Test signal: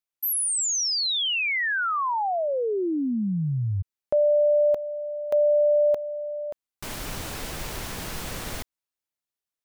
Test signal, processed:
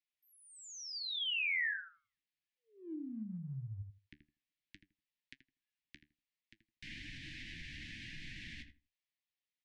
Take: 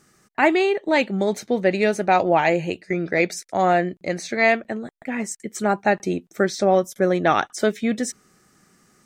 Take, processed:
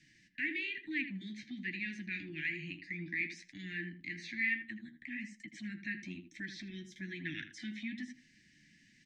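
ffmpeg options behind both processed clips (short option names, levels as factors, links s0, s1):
-filter_complex "[0:a]acrossover=split=2700[s0][s1];[s1]acompressor=threshold=0.01:ratio=4:attack=1:release=60[s2];[s0][s2]amix=inputs=2:normalize=0,lowpass=4100,flanger=delay=6.5:depth=7.5:regen=46:speed=1.1:shape=sinusoidal,asuperstop=centerf=750:order=20:qfactor=0.54,aemphasis=mode=reproduction:type=75fm,acompressor=threshold=0.00141:ratio=1.5:attack=0.95:release=129:detection=peak,tiltshelf=f=1100:g=-8.5,asplit=2[s3][s4];[s4]adelay=80,lowpass=f=1300:p=1,volume=0.447,asplit=2[s5][s6];[s6]adelay=80,lowpass=f=1300:p=1,volume=0.19,asplit=2[s7][s8];[s8]adelay=80,lowpass=f=1300:p=1,volume=0.19[s9];[s3][s5][s7][s9]amix=inputs=4:normalize=0,volume=1.5"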